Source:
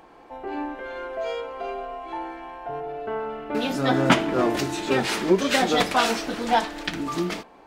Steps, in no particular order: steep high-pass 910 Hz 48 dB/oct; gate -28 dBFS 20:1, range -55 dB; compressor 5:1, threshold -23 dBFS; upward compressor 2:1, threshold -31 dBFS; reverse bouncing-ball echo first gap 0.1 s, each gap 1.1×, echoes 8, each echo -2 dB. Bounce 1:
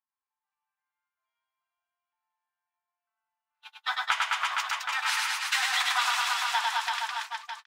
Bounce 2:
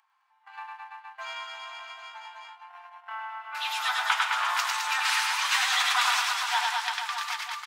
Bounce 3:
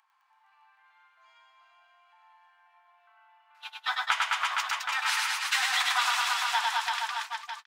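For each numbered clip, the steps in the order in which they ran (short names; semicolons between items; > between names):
steep high-pass > upward compressor > gate > reverse bouncing-ball echo > compressor; gate > steep high-pass > compressor > reverse bouncing-ball echo > upward compressor; steep high-pass > gate > upward compressor > reverse bouncing-ball echo > compressor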